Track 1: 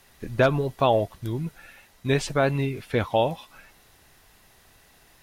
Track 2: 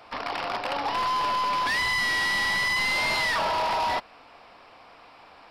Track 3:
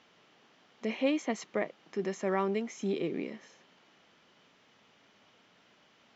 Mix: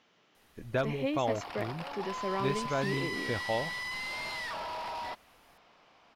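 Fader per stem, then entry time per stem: -10.5, -12.5, -4.0 dB; 0.35, 1.15, 0.00 s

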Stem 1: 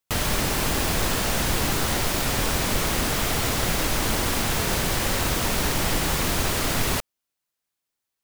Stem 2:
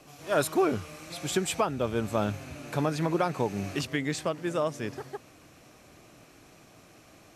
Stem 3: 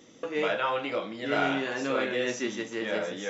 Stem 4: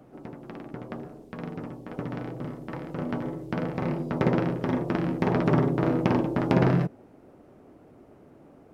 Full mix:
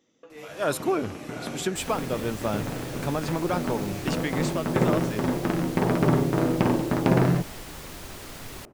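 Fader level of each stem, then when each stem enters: -16.5, -0.5, -14.5, +1.0 dB; 1.65, 0.30, 0.00, 0.55 s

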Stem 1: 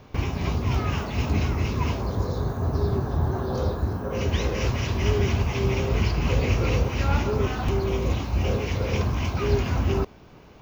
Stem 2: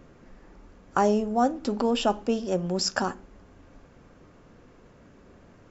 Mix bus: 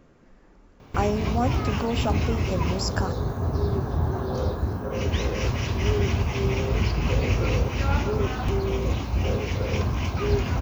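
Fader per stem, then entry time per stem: -0.5, -3.5 dB; 0.80, 0.00 s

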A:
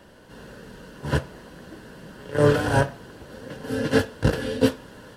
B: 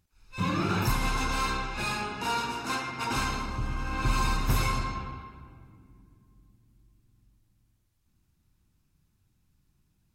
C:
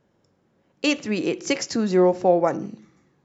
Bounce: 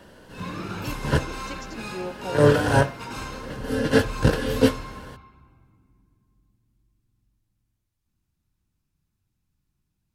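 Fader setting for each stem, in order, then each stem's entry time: +1.5, -6.0, -16.5 dB; 0.00, 0.00, 0.00 s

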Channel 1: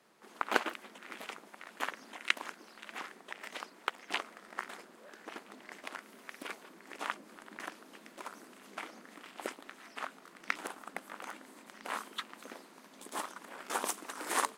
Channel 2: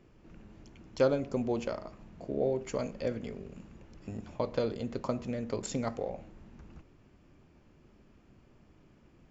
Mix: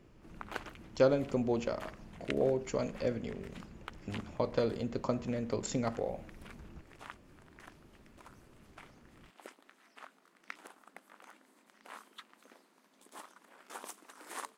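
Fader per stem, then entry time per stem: -11.5, 0.0 dB; 0.00, 0.00 s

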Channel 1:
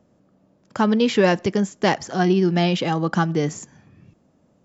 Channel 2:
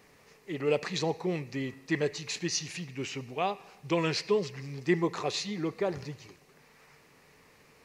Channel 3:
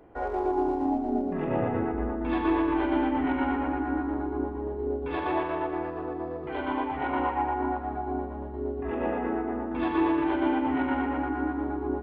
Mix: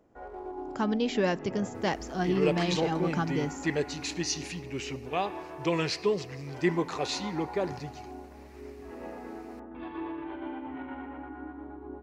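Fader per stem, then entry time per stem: -10.0, 0.0, -12.5 dB; 0.00, 1.75, 0.00 s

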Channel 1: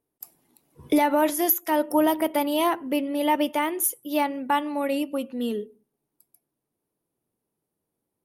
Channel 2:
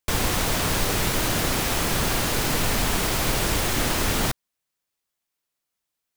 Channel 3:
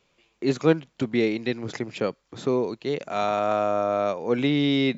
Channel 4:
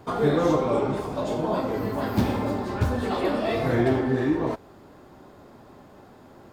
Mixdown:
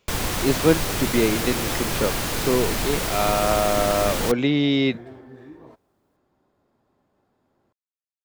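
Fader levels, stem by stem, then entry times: off, -2.0 dB, +2.0 dB, -20.0 dB; off, 0.00 s, 0.00 s, 1.20 s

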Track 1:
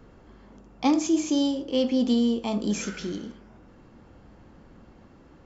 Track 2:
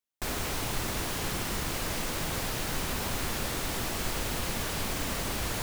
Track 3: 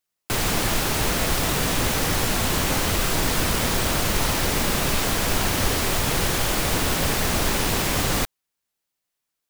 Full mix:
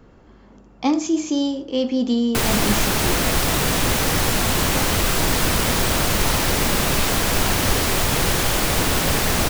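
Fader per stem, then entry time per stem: +2.5 dB, off, +3.0 dB; 0.00 s, off, 2.05 s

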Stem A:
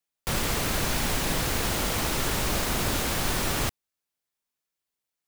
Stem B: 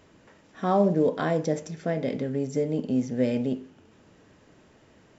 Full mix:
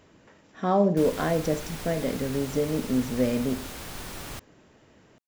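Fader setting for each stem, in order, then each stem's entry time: -11.5, 0.0 dB; 0.70, 0.00 s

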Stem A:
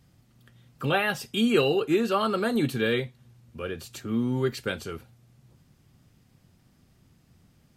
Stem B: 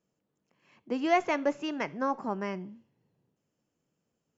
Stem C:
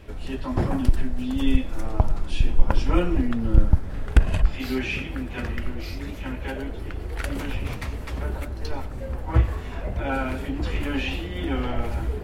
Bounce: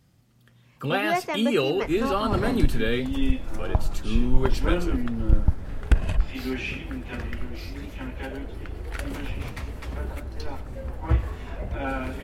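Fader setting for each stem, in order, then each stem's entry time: -1.0, -0.5, -3.0 dB; 0.00, 0.00, 1.75 s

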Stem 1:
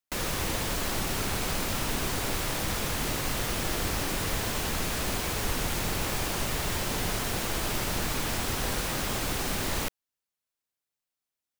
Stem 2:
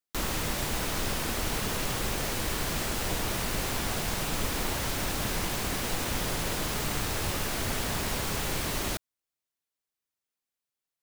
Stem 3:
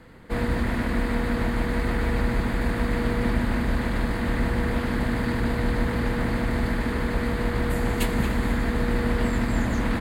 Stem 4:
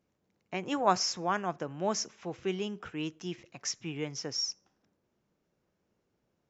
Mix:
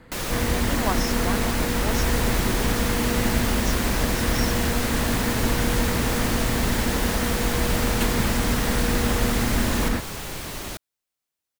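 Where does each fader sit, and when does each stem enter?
+2.0, -2.0, 0.0, -2.5 dB; 0.00, 1.80, 0.00, 0.00 s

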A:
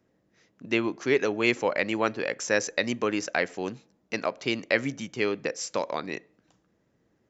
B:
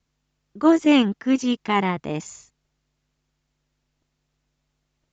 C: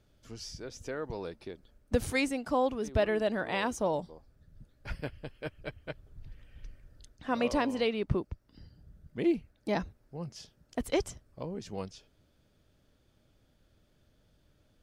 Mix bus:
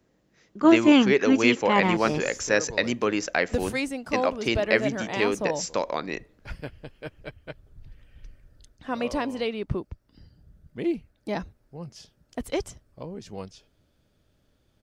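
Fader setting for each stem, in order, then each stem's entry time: +2.0, -1.0, +1.0 dB; 0.00, 0.00, 1.60 s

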